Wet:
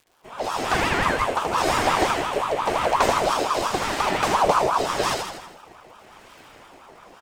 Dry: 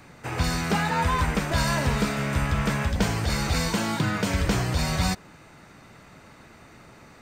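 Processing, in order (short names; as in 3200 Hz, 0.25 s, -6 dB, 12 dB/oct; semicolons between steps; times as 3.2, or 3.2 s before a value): opening faded in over 0.82 s; crackle 330/s -47 dBFS; on a send: feedback echo 80 ms, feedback 56%, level -5 dB; on the sum: rotary speaker horn 0.9 Hz; ring modulator with a swept carrier 820 Hz, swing 40%, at 5.7 Hz; gain +5.5 dB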